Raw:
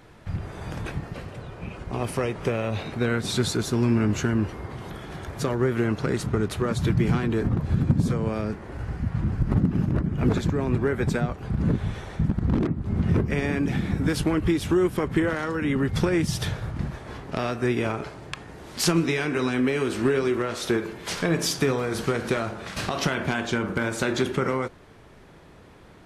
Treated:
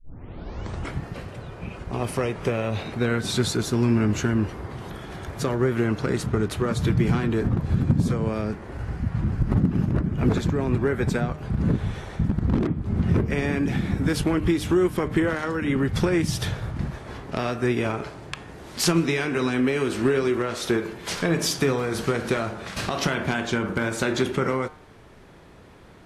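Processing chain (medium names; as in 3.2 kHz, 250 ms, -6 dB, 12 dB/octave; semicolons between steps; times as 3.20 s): tape start-up on the opening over 1.01 s; de-hum 152.4 Hz, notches 23; trim +1 dB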